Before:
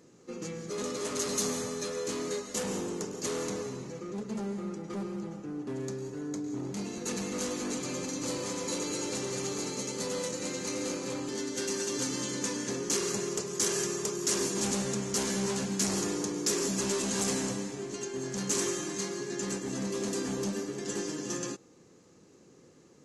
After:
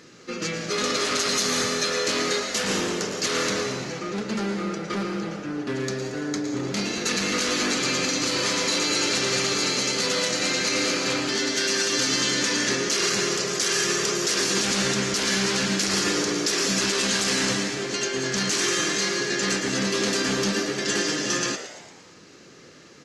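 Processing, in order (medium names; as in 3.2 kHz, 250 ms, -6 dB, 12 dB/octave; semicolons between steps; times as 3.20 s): high-order bell 2.6 kHz +11 dB 2.4 oct; peak limiter -21 dBFS, peak gain reduction 9.5 dB; frequency-shifting echo 114 ms, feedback 53%, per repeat +120 Hz, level -11 dB; trim +7 dB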